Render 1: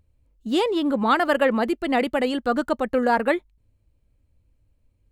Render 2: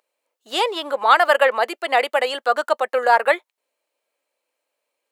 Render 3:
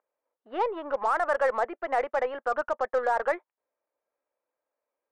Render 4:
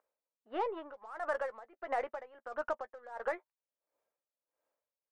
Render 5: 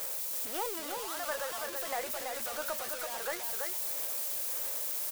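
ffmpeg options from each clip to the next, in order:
ffmpeg -i in.wav -af "highpass=frequency=550:width=0.5412,highpass=frequency=550:width=1.3066,volume=6.5dB" out.wav
ffmpeg -i in.wav -af "lowpass=frequency=1700:width=0.5412,lowpass=frequency=1700:width=1.3066,alimiter=limit=-11dB:level=0:latency=1:release=19,aeval=exprs='0.282*(cos(1*acos(clip(val(0)/0.282,-1,1)))-cos(1*PI/2))+0.00708*(cos(8*acos(clip(val(0)/0.282,-1,1)))-cos(8*PI/2))':channel_layout=same,volume=-5.5dB" out.wav
ffmpeg -i in.wav -filter_complex "[0:a]acompressor=threshold=-31dB:ratio=6,asplit=2[link_01][link_02];[link_02]adelay=13,volume=-12dB[link_03];[link_01][link_03]amix=inputs=2:normalize=0,aeval=exprs='val(0)*pow(10,-19*(0.5-0.5*cos(2*PI*1.5*n/s))/20)':channel_layout=same,volume=1dB" out.wav
ffmpeg -i in.wav -af "aeval=exprs='val(0)+0.5*0.015*sgn(val(0))':channel_layout=same,crystalizer=i=5:c=0,aecho=1:1:332:0.596,volume=-6dB" out.wav

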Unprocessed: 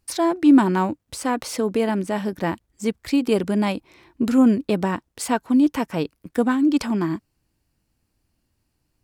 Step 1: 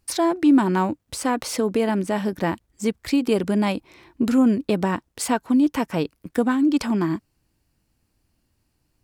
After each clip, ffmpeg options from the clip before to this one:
ffmpeg -i in.wav -af "acompressor=threshold=-22dB:ratio=1.5,volume=2dB" out.wav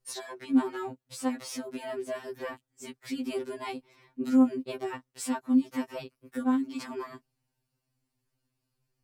ffmpeg -i in.wav -af "afftfilt=real='re*2.45*eq(mod(b,6),0)':imag='im*2.45*eq(mod(b,6),0)':win_size=2048:overlap=0.75,volume=-8dB" out.wav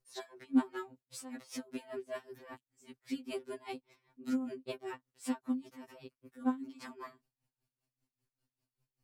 ffmpeg -i in.wav -af "aeval=exprs='val(0)*pow(10,-18*(0.5-0.5*cos(2*PI*5.1*n/s))/20)':channel_layout=same,volume=-2.5dB" out.wav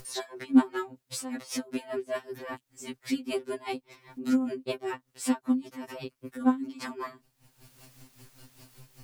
ffmpeg -i in.wav -af "acompressor=mode=upward:threshold=-40dB:ratio=2.5,volume=8.5dB" out.wav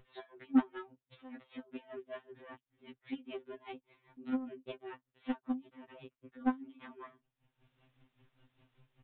ffmpeg -i in.wav -af "aeval=exprs='0.398*(cos(1*acos(clip(val(0)/0.398,-1,1)))-cos(1*PI/2))+0.0282*(cos(7*acos(clip(val(0)/0.398,-1,1)))-cos(7*PI/2))':channel_layout=same,aresample=8000,aresample=44100,volume=-7.5dB" out.wav

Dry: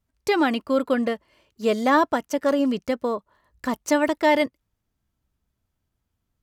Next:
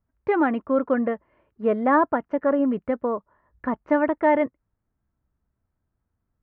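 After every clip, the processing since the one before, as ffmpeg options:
ffmpeg -i in.wav -af "lowpass=frequency=1800:width=0.5412,lowpass=frequency=1800:width=1.3066" out.wav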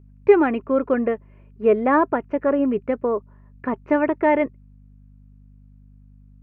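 ffmpeg -i in.wav -af "aeval=exprs='val(0)+0.00398*(sin(2*PI*50*n/s)+sin(2*PI*2*50*n/s)/2+sin(2*PI*3*50*n/s)/3+sin(2*PI*4*50*n/s)/4+sin(2*PI*5*50*n/s)/5)':channel_layout=same,equalizer=frequency=125:width_type=o:width=0.33:gain=7,equalizer=frequency=400:width_type=o:width=0.33:gain=11,equalizer=frequency=2500:width_type=o:width=0.33:gain=11" out.wav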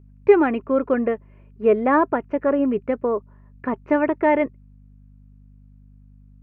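ffmpeg -i in.wav -af anull out.wav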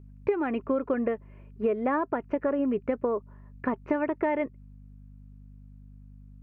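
ffmpeg -i in.wav -af "acompressor=threshold=-23dB:ratio=10" out.wav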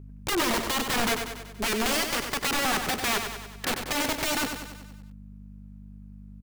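ffmpeg -i in.wav -filter_complex "[0:a]aeval=exprs='(mod(20*val(0)+1,2)-1)/20':channel_layout=same,asplit=2[link_01][link_02];[link_02]aecho=0:1:95|190|285|380|475|570|665:0.447|0.25|0.14|0.0784|0.0439|0.0246|0.0138[link_03];[link_01][link_03]amix=inputs=2:normalize=0,volume=4.5dB" out.wav

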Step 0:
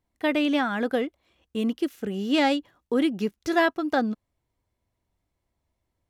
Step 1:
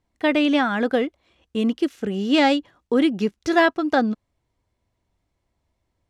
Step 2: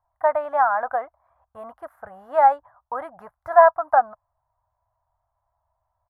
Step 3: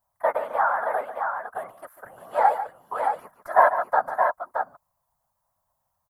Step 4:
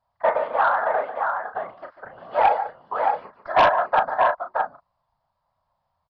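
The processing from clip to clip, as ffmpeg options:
ffmpeg -i in.wav -af "lowpass=8300,volume=4.5dB" out.wav
ffmpeg -i in.wav -af "firequalizer=gain_entry='entry(110,0);entry(200,-25);entry(390,-25);entry(630,11);entry(1000,14);entry(1700,0);entry(2700,-29);entry(6200,-30);entry(11000,-4)':delay=0.05:min_phase=1,volume=-5dB" out.wav
ffmpeg -i in.wav -af "crystalizer=i=6.5:c=0,afftfilt=real='hypot(re,im)*cos(2*PI*random(0))':imag='hypot(re,im)*sin(2*PI*random(1))':win_size=512:overlap=0.75,aecho=1:1:145|621:0.266|0.531" out.wav
ffmpeg -i in.wav -filter_complex "[0:a]aresample=11025,aresample=44100,asplit=2[link_01][link_02];[link_02]adelay=35,volume=-7.5dB[link_03];[link_01][link_03]amix=inputs=2:normalize=0,asplit=2[link_04][link_05];[link_05]aeval=exprs='0.75*sin(PI/2*2.82*val(0)/0.75)':channel_layout=same,volume=-7dB[link_06];[link_04][link_06]amix=inputs=2:normalize=0,volume=-6.5dB" out.wav

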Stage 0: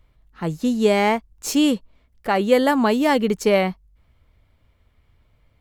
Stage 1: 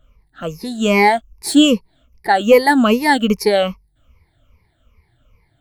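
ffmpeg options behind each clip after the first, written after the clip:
ffmpeg -i in.wav -af "afftfilt=real='re*pow(10,20/40*sin(2*PI*(0.84*log(max(b,1)*sr/1024/100)/log(2)-(-2.5)*(pts-256)/sr)))':imag='im*pow(10,20/40*sin(2*PI*(0.84*log(max(b,1)*sr/1024/100)/log(2)-(-2.5)*(pts-256)/sr)))':win_size=1024:overlap=0.75,apsyclip=2dB,adynamicequalizer=threshold=0.0562:dfrequency=2400:dqfactor=0.7:tfrequency=2400:tqfactor=0.7:attack=5:release=100:ratio=0.375:range=1.5:mode=boostabove:tftype=highshelf,volume=-2dB" out.wav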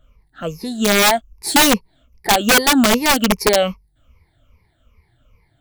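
ffmpeg -i in.wav -af "aeval=exprs='(mod(2.11*val(0)+1,2)-1)/2.11':channel_layout=same" out.wav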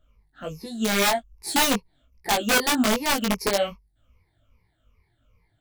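ffmpeg -i in.wav -af "flanger=delay=17.5:depth=3.1:speed=1.3,volume=-5dB" out.wav

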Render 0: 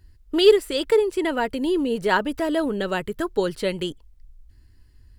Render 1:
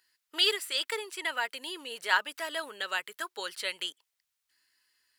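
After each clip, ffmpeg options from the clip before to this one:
ffmpeg -i in.wav -af "highpass=1400" out.wav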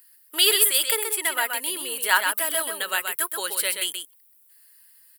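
ffmpeg -i in.wav -filter_complex "[0:a]aexciter=amount=12:drive=2.4:freq=8800,asplit=2[link_01][link_02];[link_02]aecho=0:1:128:0.501[link_03];[link_01][link_03]amix=inputs=2:normalize=0,volume=5.5dB" out.wav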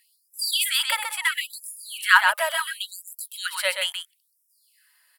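ffmpeg -i in.wav -af "aemphasis=mode=reproduction:type=75fm,afftfilt=real='re*gte(b*sr/1024,480*pow(5100/480,0.5+0.5*sin(2*PI*0.73*pts/sr)))':imag='im*gte(b*sr/1024,480*pow(5100/480,0.5+0.5*sin(2*PI*0.73*pts/sr)))':win_size=1024:overlap=0.75,volume=6.5dB" out.wav

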